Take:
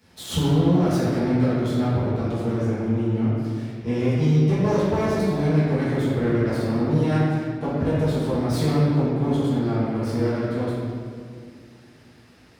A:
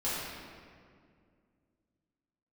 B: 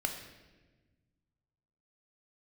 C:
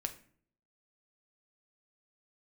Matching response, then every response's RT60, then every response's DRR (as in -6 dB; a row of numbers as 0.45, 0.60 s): A; 2.2, 1.3, 0.55 s; -11.5, 3.5, 6.0 dB